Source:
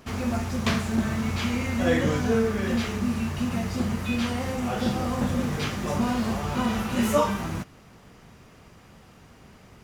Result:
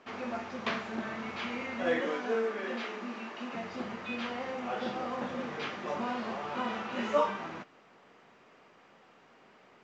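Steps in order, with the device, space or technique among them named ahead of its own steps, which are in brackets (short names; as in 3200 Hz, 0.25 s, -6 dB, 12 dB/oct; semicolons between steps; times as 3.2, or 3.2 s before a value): 2–3.55 HPF 220 Hz 24 dB/oct; telephone (BPF 370–3100 Hz; gain -4 dB; µ-law 128 kbps 16000 Hz)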